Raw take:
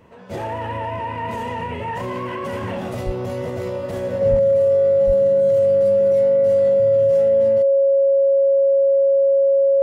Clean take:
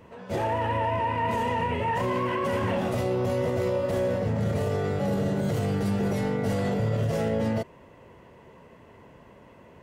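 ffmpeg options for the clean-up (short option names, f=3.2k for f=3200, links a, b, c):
-filter_complex "[0:a]bandreject=f=550:w=30,asplit=3[a][b][c];[a]afade=t=out:st=3.05:d=0.02[d];[b]highpass=f=140:w=0.5412,highpass=f=140:w=1.3066,afade=t=in:st=3.05:d=0.02,afade=t=out:st=3.17:d=0.02[e];[c]afade=t=in:st=3.17:d=0.02[f];[d][e][f]amix=inputs=3:normalize=0,asplit=3[g][h][i];[g]afade=t=out:st=4.3:d=0.02[j];[h]highpass=f=140:w=0.5412,highpass=f=140:w=1.3066,afade=t=in:st=4.3:d=0.02,afade=t=out:st=4.42:d=0.02[k];[i]afade=t=in:st=4.42:d=0.02[l];[j][k][l]amix=inputs=3:normalize=0,asplit=3[m][n][o];[m]afade=t=out:st=5.06:d=0.02[p];[n]highpass=f=140:w=0.5412,highpass=f=140:w=1.3066,afade=t=in:st=5.06:d=0.02,afade=t=out:st=5.18:d=0.02[q];[o]afade=t=in:st=5.18:d=0.02[r];[p][q][r]amix=inputs=3:normalize=0,asetnsamples=n=441:p=0,asendcmd='4.39 volume volume 7.5dB',volume=0dB"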